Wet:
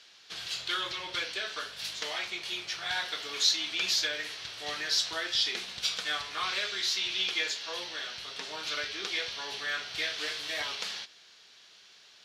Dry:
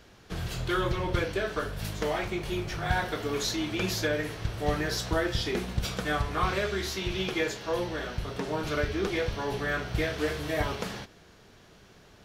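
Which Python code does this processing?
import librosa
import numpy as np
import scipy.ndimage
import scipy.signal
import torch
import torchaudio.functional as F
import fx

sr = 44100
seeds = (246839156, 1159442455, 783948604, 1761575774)

y = fx.bandpass_q(x, sr, hz=4100.0, q=1.5)
y = y * librosa.db_to_amplitude(8.5)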